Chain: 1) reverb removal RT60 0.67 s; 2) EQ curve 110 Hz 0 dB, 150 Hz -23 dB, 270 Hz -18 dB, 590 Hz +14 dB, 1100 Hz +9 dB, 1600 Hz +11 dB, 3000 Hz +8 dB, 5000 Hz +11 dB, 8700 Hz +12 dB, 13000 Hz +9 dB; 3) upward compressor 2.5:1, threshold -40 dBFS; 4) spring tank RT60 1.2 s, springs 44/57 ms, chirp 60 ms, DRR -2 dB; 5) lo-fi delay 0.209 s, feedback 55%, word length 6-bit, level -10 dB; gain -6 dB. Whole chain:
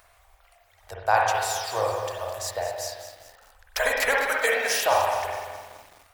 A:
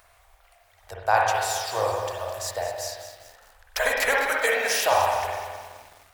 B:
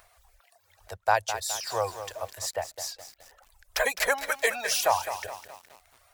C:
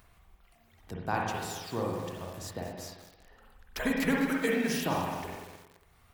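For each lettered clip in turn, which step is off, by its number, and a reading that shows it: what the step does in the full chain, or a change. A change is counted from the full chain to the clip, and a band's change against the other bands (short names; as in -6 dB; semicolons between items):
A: 1, momentary loudness spread change +2 LU; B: 4, 8 kHz band +4.5 dB; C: 2, 250 Hz band +26.5 dB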